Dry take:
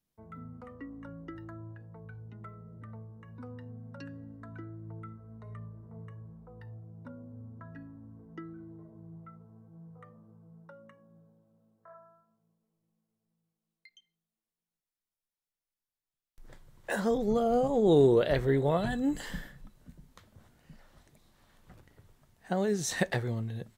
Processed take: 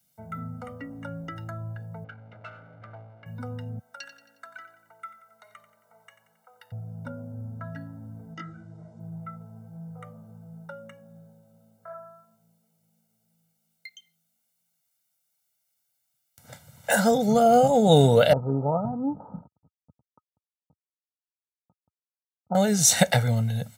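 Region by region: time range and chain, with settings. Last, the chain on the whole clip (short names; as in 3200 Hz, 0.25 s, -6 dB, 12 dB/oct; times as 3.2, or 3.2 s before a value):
2.04–3.26 minimum comb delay 1.8 ms + LPF 2400 Hz + low shelf 310 Hz -12 dB
3.79–6.72 HPF 1200 Hz + split-band echo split 780 Hz, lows 0.141 s, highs 90 ms, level -12 dB
8.34–9 LPF 7000 Hz 24 dB/oct + high shelf 3000 Hz +10 dB + detuned doubles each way 48 cents
18.33–22.55 backlash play -37 dBFS + rippled Chebyshev low-pass 1300 Hz, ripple 9 dB
whole clip: HPF 94 Hz 24 dB/oct; high shelf 5000 Hz +10.5 dB; comb 1.4 ms, depth 90%; gain +7 dB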